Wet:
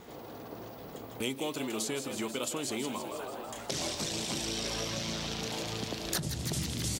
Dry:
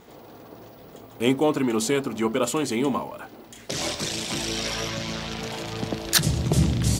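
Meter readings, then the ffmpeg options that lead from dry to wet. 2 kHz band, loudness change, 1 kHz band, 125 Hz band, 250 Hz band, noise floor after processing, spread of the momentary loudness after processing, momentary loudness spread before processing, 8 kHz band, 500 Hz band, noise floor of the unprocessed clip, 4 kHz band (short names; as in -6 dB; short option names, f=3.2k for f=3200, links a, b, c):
-8.5 dB, -9.5 dB, -9.0 dB, -12.5 dB, -11.0 dB, -46 dBFS, 12 LU, 19 LU, -6.0 dB, -10.5 dB, -47 dBFS, -6.5 dB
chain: -filter_complex "[0:a]asplit=9[a][b][c][d][e][f][g][h][i];[b]adelay=161,afreqshift=85,volume=-12dB[j];[c]adelay=322,afreqshift=170,volume=-15.9dB[k];[d]adelay=483,afreqshift=255,volume=-19.8dB[l];[e]adelay=644,afreqshift=340,volume=-23.6dB[m];[f]adelay=805,afreqshift=425,volume=-27.5dB[n];[g]adelay=966,afreqshift=510,volume=-31.4dB[o];[h]adelay=1127,afreqshift=595,volume=-35.3dB[p];[i]adelay=1288,afreqshift=680,volume=-39.1dB[q];[a][j][k][l][m][n][o][p][q]amix=inputs=9:normalize=0,acrossover=split=1100|2800[r][s][t];[r]acompressor=threshold=-36dB:ratio=4[u];[s]acompressor=threshold=-50dB:ratio=4[v];[t]acompressor=threshold=-35dB:ratio=4[w];[u][v][w]amix=inputs=3:normalize=0"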